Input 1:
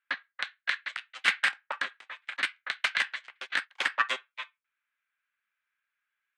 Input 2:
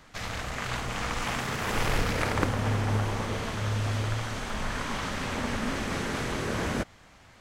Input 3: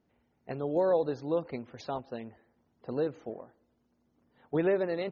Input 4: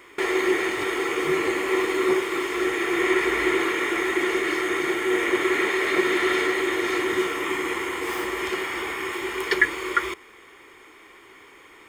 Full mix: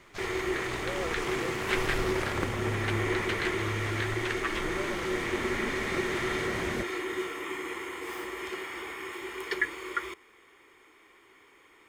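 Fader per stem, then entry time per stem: −7.5, −5.5, −12.0, −9.5 decibels; 0.45, 0.00, 0.10, 0.00 seconds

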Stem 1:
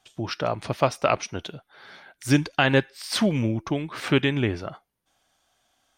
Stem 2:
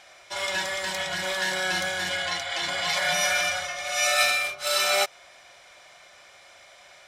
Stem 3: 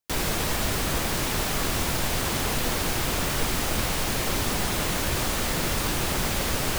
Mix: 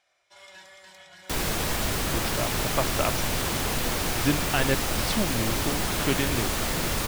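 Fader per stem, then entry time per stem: −6.0, −20.0, −1.0 decibels; 1.95, 0.00, 1.20 seconds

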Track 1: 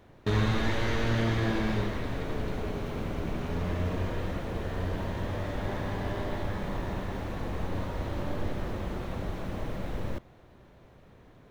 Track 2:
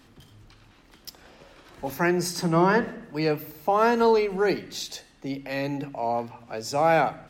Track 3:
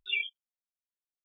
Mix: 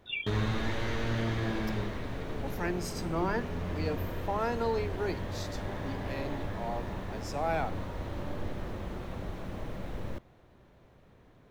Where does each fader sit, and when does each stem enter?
−4.0, −11.0, −5.0 decibels; 0.00, 0.60, 0.00 seconds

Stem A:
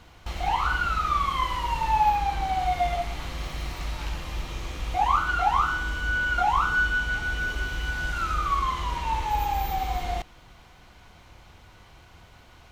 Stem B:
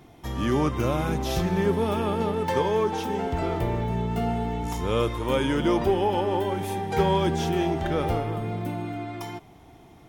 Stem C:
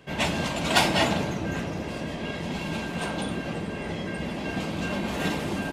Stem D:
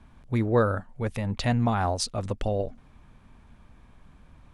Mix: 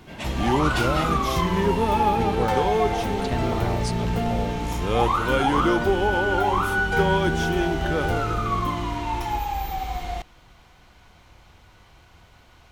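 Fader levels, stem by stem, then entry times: −1.0, +1.0, −8.5, −5.5 decibels; 0.00, 0.00, 0.00, 1.85 seconds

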